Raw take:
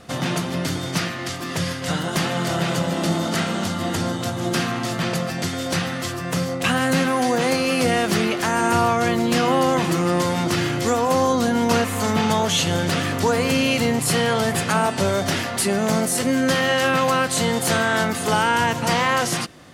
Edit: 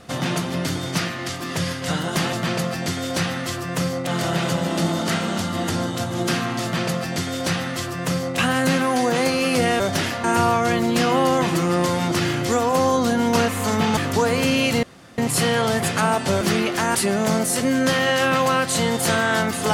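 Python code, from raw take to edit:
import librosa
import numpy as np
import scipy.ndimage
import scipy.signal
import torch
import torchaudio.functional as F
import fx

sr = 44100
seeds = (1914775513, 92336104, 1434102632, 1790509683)

y = fx.edit(x, sr, fx.duplicate(start_s=4.89, length_s=1.74, to_s=2.33),
    fx.swap(start_s=8.06, length_s=0.54, other_s=15.13, other_length_s=0.44),
    fx.cut(start_s=12.33, length_s=0.71),
    fx.insert_room_tone(at_s=13.9, length_s=0.35), tone=tone)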